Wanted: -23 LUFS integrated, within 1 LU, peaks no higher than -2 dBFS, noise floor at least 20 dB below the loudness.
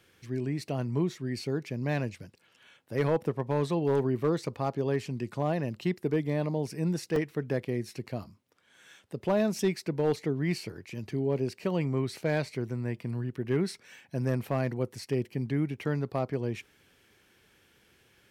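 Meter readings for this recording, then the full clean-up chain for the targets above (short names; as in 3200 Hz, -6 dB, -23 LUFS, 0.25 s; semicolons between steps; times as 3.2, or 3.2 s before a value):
clipped 0.3%; flat tops at -18.5 dBFS; dropouts 1; longest dropout 2.1 ms; loudness -31.5 LUFS; peak -18.5 dBFS; loudness target -23.0 LUFS
-> clip repair -18.5 dBFS; interpolate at 7.16, 2.1 ms; gain +8.5 dB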